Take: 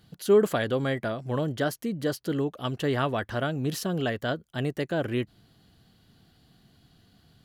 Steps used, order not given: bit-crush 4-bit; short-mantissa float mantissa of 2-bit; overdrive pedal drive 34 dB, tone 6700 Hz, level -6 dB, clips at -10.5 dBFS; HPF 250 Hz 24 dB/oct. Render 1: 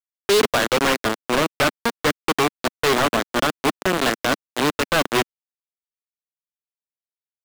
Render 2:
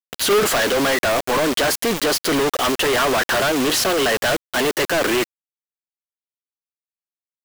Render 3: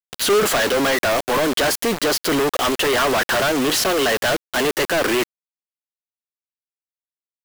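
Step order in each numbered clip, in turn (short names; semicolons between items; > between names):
bit-crush > HPF > short-mantissa float > overdrive pedal; HPF > short-mantissa float > overdrive pedal > bit-crush; HPF > overdrive pedal > short-mantissa float > bit-crush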